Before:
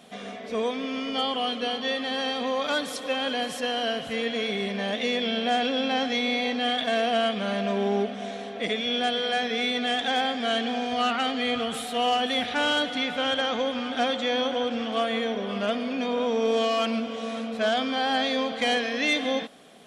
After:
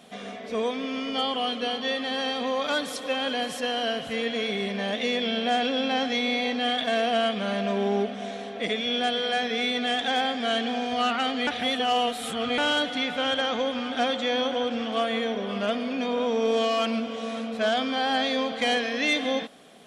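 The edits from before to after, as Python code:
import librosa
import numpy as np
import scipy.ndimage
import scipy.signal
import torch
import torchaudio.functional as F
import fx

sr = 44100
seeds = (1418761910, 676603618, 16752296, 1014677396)

y = fx.edit(x, sr, fx.reverse_span(start_s=11.47, length_s=1.11), tone=tone)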